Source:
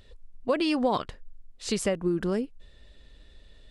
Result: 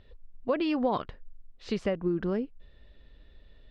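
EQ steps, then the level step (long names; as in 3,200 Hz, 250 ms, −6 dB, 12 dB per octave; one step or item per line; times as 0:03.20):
high-frequency loss of the air 240 metres
−1.5 dB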